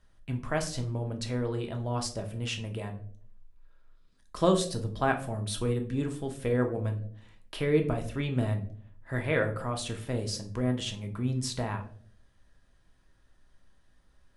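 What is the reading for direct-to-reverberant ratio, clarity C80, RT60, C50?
4.0 dB, 16.5 dB, 0.55 s, 12.0 dB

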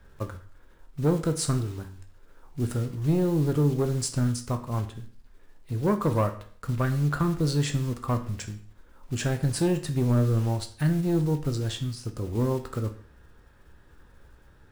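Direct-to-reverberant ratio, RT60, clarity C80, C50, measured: 6.5 dB, 0.45 s, 16.0 dB, 12.5 dB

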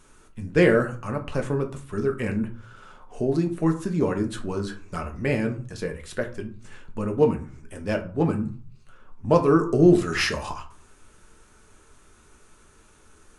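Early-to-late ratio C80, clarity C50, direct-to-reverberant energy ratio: 18.0 dB, 12.5 dB, 3.5 dB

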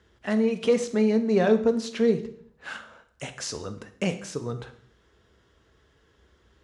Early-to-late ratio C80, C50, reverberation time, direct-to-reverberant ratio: 15.5 dB, 12.5 dB, 0.60 s, 9.0 dB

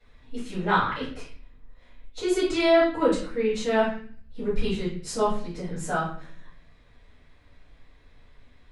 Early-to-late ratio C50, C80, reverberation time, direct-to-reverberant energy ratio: 4.0 dB, 8.5 dB, 0.45 s, −12.0 dB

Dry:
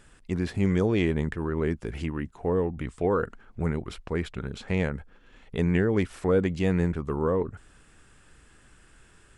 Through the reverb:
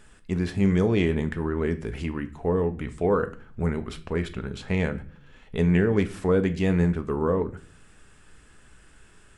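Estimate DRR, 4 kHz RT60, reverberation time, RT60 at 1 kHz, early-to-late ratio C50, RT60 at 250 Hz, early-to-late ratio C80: 8.5 dB, 0.40 s, 0.45 s, 0.40 s, 16.0 dB, 0.65 s, 20.0 dB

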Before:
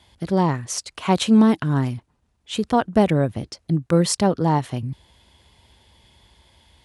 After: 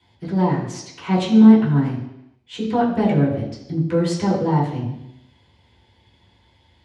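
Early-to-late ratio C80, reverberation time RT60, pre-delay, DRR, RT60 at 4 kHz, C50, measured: 7.0 dB, 0.85 s, 3 ms, −7.5 dB, 0.85 s, 5.0 dB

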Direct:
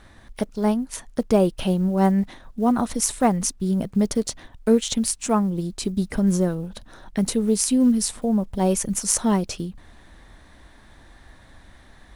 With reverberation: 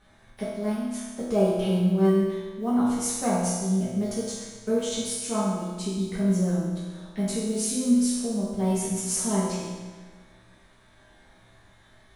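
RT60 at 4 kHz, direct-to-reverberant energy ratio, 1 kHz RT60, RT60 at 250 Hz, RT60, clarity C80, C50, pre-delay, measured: 1.3 s, −10.5 dB, 1.4 s, 1.4 s, 1.4 s, 1.5 dB, −1.0 dB, 3 ms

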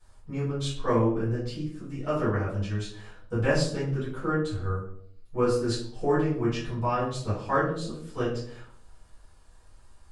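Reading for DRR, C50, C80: −12.0 dB, 4.0 dB, 8.0 dB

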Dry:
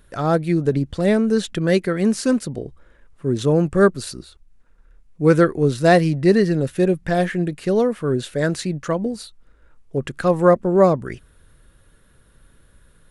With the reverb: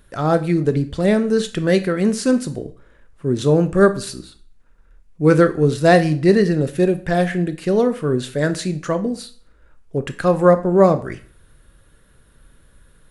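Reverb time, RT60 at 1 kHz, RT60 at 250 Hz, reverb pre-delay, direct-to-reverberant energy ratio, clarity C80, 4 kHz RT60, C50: 0.45 s, 0.45 s, 0.45 s, 8 ms, 10.0 dB, 20.0 dB, 0.40 s, 15.5 dB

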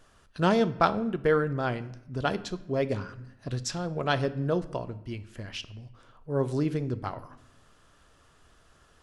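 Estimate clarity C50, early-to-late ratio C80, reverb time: 16.5 dB, 19.0 dB, 0.85 s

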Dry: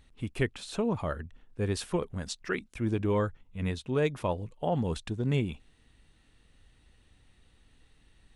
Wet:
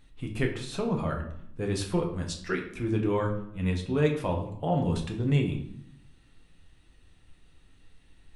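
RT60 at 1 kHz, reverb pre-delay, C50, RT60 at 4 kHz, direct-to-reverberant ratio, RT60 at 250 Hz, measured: 0.70 s, 6 ms, 8.0 dB, 0.50 s, 1.0 dB, 1.0 s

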